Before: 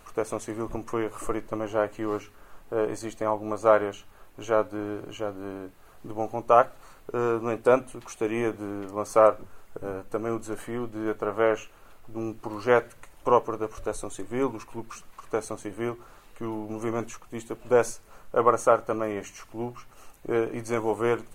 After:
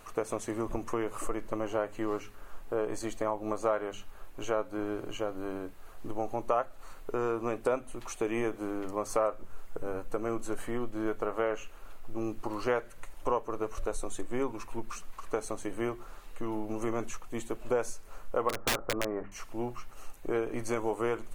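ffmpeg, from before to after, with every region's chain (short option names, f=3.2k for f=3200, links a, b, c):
-filter_complex "[0:a]asettb=1/sr,asplit=3[a][b][c];[a]atrim=end=18.494[d];[b]atrim=start=18.49:end=19.32,asetpts=PTS-STARTPTS,afade=t=in:d=0.004:c=qsin,afade=t=out:st=0.826:d=0.004:c=qsin,lowpass=f=1.5k:w=0.5412,lowpass=f=1.5k:w=1.3066,adynamicequalizer=threshold=0.0224:dfrequency=910:dqfactor=3.2:tfrequency=910:tqfactor=3.2:attack=5:release=100:ratio=0.375:range=2:mode=cutabove:tftype=bell,aeval=exprs='(mod(6.68*val(0)+1,2)-1)/6.68':c=same[e];[c]atrim=start=19.316[f];[d][e]acrossfade=d=0.004:c1=hsin:c2=qsin[g];[g][f]acrossfade=d=0.004:c1=qsin:c2=hsin,bandreject=f=50:t=h:w=6,bandreject=f=100:t=h:w=6,bandreject=f=150:t=h:w=6,bandreject=f=200:t=h:w=6,asubboost=boost=2.5:cutoff=56,acompressor=threshold=-28dB:ratio=3"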